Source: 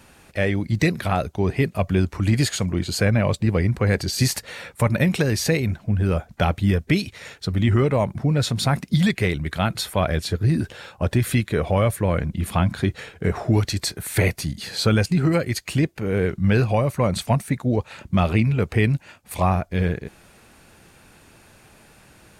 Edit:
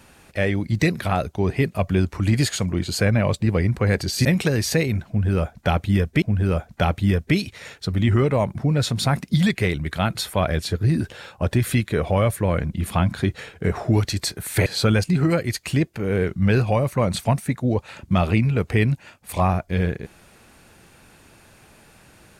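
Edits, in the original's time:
4.25–4.99 s: delete
5.82–6.96 s: loop, 2 plays
14.26–14.68 s: delete

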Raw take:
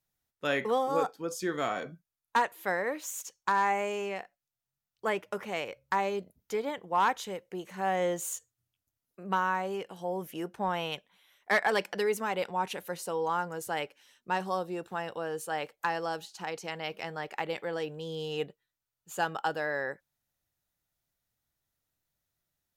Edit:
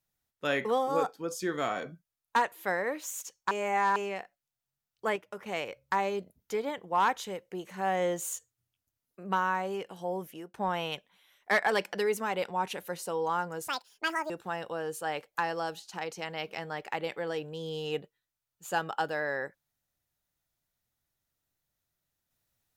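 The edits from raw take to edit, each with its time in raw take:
3.51–3.96 s: reverse
5.16–5.46 s: gain -6.5 dB
10.15–10.54 s: fade out, to -17 dB
13.68–14.76 s: speed 174%

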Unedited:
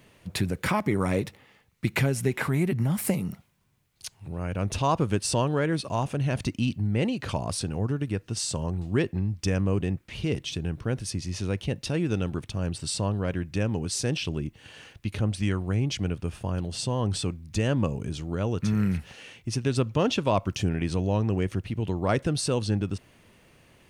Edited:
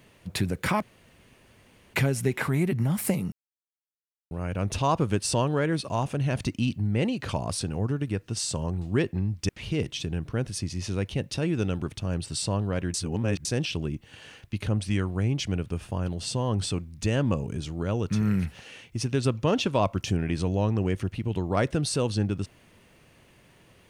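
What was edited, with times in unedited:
0.82–1.94 s: room tone
3.32–4.31 s: mute
9.49–10.01 s: delete
13.46–13.97 s: reverse

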